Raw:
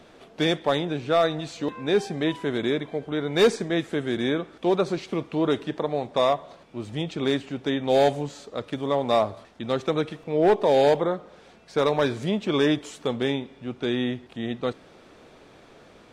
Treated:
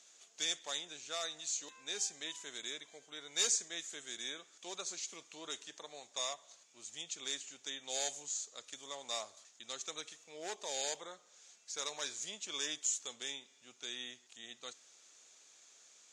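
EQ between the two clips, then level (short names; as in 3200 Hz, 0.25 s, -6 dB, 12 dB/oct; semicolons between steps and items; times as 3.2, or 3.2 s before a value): band-pass 6800 Hz, Q 7.2; +14.0 dB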